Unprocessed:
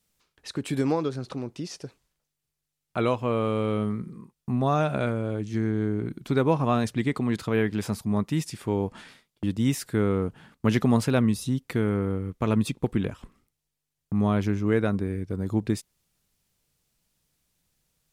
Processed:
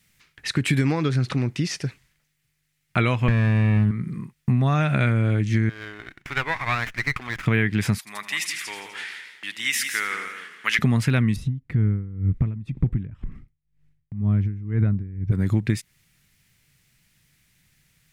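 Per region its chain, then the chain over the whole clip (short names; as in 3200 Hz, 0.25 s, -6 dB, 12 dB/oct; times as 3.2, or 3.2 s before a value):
3.28–3.91 minimum comb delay 0.51 ms + tone controls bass +13 dB, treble -2 dB
5.69–7.46 HPF 1100 Hz + high shelf 3600 Hz -7 dB + running maximum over 9 samples
7.98–10.79 HPF 1400 Hz + echo 0.169 s -8.5 dB + warbling echo 83 ms, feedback 69%, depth 152 cents, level -14 dB
11.36–15.32 tilt -4.5 dB/oct + compressor 4:1, threshold -22 dBFS + dB-linear tremolo 2 Hz, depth 23 dB
whole clip: graphic EQ 125/500/1000/2000 Hz +8/-6/-4/+12 dB; compressor, threshold -25 dBFS; gain +8 dB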